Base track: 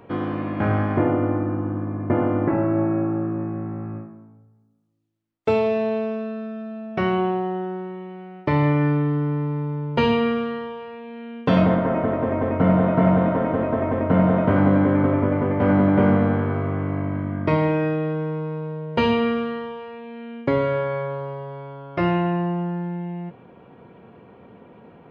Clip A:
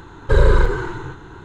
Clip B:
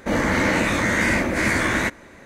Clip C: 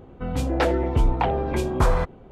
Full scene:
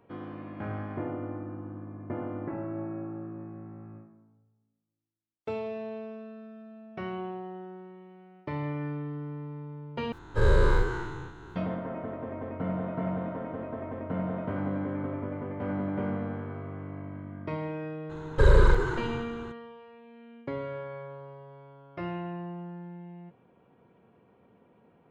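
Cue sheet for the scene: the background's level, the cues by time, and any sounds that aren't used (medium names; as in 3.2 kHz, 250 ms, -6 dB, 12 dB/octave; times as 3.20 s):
base track -14.5 dB
10.12 s: replace with A -12.5 dB + every event in the spectrogram widened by 120 ms
18.09 s: add A -5.5 dB, fades 0.02 s
not used: B, C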